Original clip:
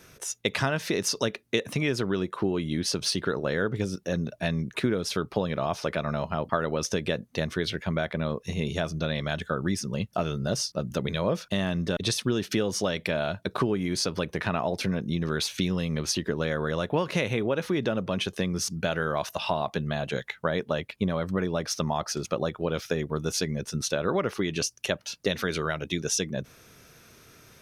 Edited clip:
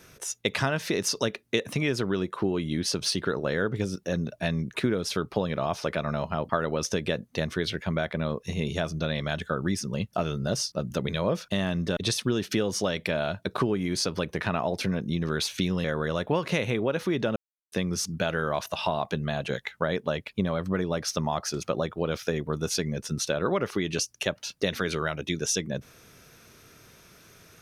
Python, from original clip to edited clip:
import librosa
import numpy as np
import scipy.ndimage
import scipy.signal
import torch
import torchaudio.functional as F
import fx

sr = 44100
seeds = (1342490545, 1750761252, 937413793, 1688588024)

y = fx.edit(x, sr, fx.cut(start_s=15.84, length_s=0.63),
    fx.silence(start_s=17.99, length_s=0.36), tone=tone)